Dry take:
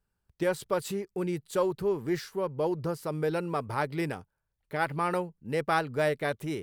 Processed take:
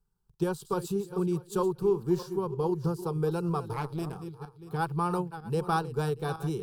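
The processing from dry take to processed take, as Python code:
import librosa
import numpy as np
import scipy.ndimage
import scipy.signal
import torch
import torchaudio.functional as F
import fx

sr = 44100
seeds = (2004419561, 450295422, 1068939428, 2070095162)

y = fx.reverse_delay_fb(x, sr, ms=318, feedback_pct=41, wet_db=-11.0)
y = fx.transient(y, sr, attack_db=1, sustain_db=-3)
y = fx.low_shelf(y, sr, hz=210.0, db=8.5)
y = fx.fixed_phaser(y, sr, hz=400.0, stages=8)
y = fx.tube_stage(y, sr, drive_db=25.0, bias=0.7, at=(3.73, 4.16))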